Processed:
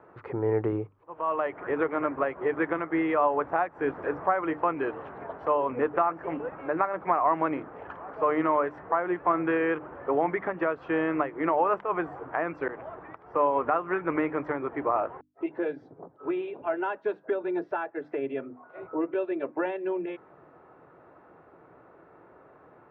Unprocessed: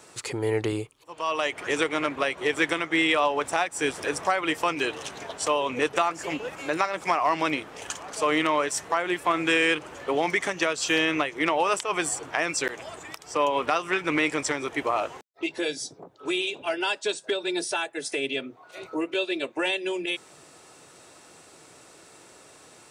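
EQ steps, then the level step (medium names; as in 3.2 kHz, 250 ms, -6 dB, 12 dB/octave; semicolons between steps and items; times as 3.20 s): low-pass 1.5 kHz 24 dB/octave; hum notches 50/100/150/200/250/300 Hz; 0.0 dB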